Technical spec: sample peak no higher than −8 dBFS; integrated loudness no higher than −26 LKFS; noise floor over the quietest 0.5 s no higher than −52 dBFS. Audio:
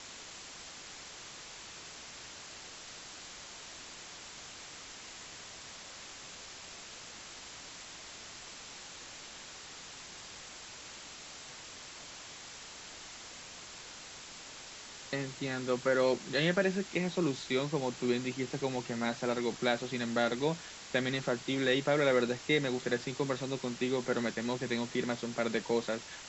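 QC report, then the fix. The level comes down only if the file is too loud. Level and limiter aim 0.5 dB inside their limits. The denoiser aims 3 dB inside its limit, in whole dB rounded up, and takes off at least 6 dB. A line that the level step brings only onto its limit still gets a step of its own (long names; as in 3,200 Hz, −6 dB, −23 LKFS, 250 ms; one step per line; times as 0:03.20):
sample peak −16.0 dBFS: in spec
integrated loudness −36.0 LKFS: in spec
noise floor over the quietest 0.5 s −49 dBFS: out of spec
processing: broadband denoise 6 dB, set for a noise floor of −49 dBFS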